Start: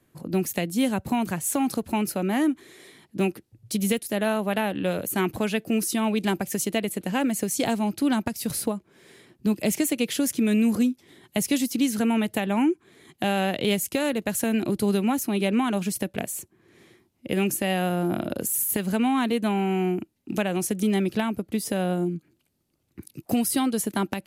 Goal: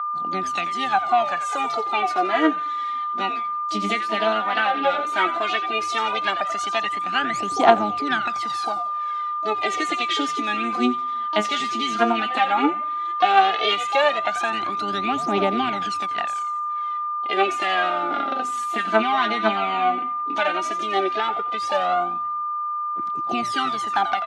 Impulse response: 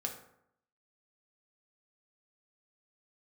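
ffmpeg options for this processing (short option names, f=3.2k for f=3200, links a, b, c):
-filter_complex "[0:a]agate=range=-27dB:threshold=-56dB:ratio=16:detection=peak,acontrast=82,asplit=5[a][b][c][d][e];[b]adelay=87,afreqshift=-120,volume=-11dB[f];[c]adelay=174,afreqshift=-240,volume=-18.7dB[g];[d]adelay=261,afreqshift=-360,volume=-26.5dB[h];[e]adelay=348,afreqshift=-480,volume=-34.2dB[i];[a][f][g][h][i]amix=inputs=5:normalize=0,aphaser=in_gain=1:out_gain=1:delay=4.9:decay=0.77:speed=0.13:type=triangular,asplit=2[j][k];[k]asetrate=66075,aresample=44100,atempo=0.66742,volume=-12dB[l];[j][l]amix=inputs=2:normalize=0,asplit=2[m][n];[1:a]atrim=start_sample=2205[o];[n][o]afir=irnorm=-1:irlink=0,volume=-20.5dB[p];[m][p]amix=inputs=2:normalize=0,aeval=exprs='val(0)+0.112*sin(2*PI*1200*n/s)':c=same,highpass=450,equalizer=f=500:t=q:w=4:g=-8,equalizer=f=740:t=q:w=4:g=9,equalizer=f=1.4k:t=q:w=4:g=7,equalizer=f=2k:t=q:w=4:g=5,equalizer=f=3.4k:t=q:w=4:g=6,equalizer=f=5.2k:t=q:w=4:g=-4,lowpass=f=5.6k:w=0.5412,lowpass=f=5.6k:w=1.3066,volume=-8dB"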